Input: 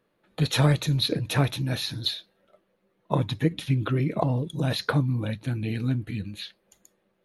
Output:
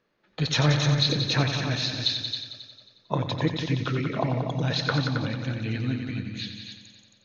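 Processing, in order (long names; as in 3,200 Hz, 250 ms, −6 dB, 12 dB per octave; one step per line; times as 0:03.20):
Chebyshev low-pass with heavy ripple 6,600 Hz, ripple 3 dB
high-shelf EQ 3,500 Hz +7.5 dB
on a send: echo machine with several playback heads 90 ms, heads all three, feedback 41%, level −9 dB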